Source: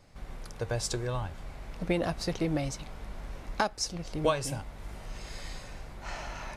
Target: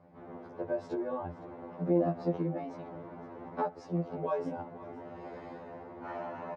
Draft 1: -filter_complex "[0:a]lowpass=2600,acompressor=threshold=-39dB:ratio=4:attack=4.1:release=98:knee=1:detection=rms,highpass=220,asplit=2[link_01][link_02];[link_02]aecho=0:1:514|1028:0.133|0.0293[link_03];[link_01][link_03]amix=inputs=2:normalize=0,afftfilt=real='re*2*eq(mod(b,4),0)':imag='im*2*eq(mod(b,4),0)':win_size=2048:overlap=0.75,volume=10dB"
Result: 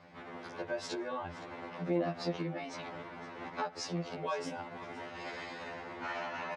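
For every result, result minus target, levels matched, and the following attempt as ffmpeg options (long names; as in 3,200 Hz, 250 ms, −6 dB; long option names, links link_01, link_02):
2,000 Hz band +12.5 dB; downward compressor: peak gain reduction +5 dB
-filter_complex "[0:a]lowpass=760,acompressor=threshold=-39dB:ratio=4:attack=4.1:release=98:knee=1:detection=rms,highpass=220,asplit=2[link_01][link_02];[link_02]aecho=0:1:514|1028:0.133|0.0293[link_03];[link_01][link_03]amix=inputs=2:normalize=0,afftfilt=real='re*2*eq(mod(b,4),0)':imag='im*2*eq(mod(b,4),0)':win_size=2048:overlap=0.75,volume=10dB"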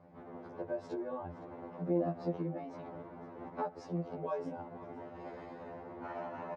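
downward compressor: peak gain reduction +4.5 dB
-filter_complex "[0:a]lowpass=760,acompressor=threshold=-33dB:ratio=4:attack=4.1:release=98:knee=1:detection=rms,highpass=220,asplit=2[link_01][link_02];[link_02]aecho=0:1:514|1028:0.133|0.0293[link_03];[link_01][link_03]amix=inputs=2:normalize=0,afftfilt=real='re*2*eq(mod(b,4),0)':imag='im*2*eq(mod(b,4),0)':win_size=2048:overlap=0.75,volume=10dB"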